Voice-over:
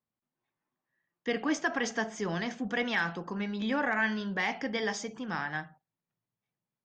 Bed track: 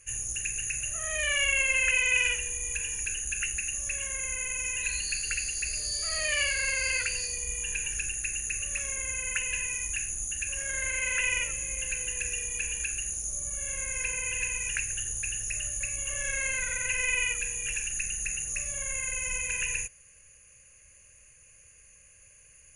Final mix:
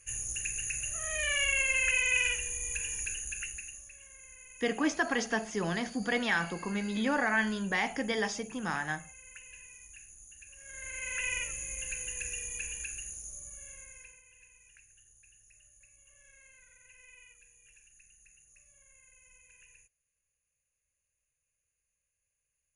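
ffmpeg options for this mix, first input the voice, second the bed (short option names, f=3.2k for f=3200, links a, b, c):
-filter_complex "[0:a]adelay=3350,volume=0.5dB[a];[1:a]volume=11dB,afade=t=out:st=2.98:d=0.92:silence=0.149624,afade=t=in:st=10.58:d=0.73:silence=0.199526,afade=t=out:st=12.5:d=1.73:silence=0.0707946[b];[a][b]amix=inputs=2:normalize=0"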